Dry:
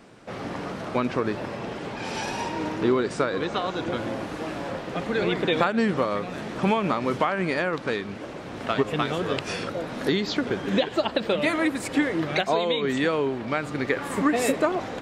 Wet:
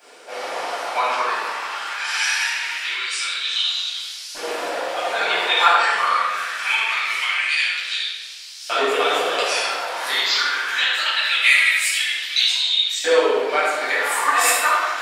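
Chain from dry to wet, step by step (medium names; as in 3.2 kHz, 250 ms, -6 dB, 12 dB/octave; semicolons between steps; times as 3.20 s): octave divider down 2 oct, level -5 dB; tilt EQ +4 dB/octave; LFO high-pass saw up 0.23 Hz 450–5300 Hz; simulated room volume 910 m³, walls mixed, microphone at 8.1 m; trim -8.5 dB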